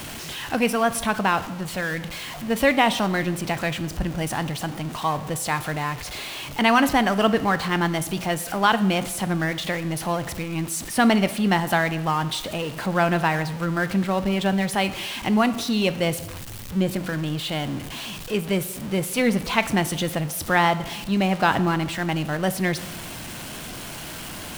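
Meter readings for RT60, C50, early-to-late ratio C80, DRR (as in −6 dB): 1.0 s, 14.5 dB, 16.5 dB, 12.0 dB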